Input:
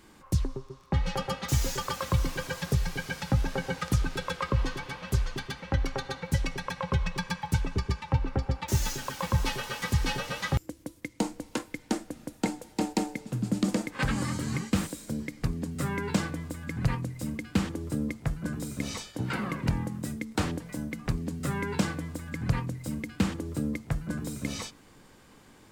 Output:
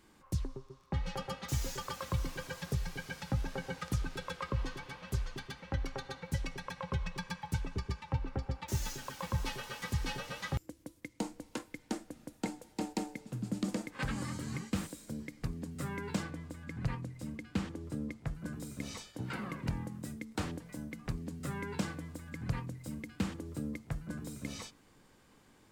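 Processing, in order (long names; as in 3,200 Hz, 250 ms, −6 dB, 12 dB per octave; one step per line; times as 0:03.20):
0:16.23–0:18.35: high-shelf EQ 9,300 Hz −9 dB
level −8 dB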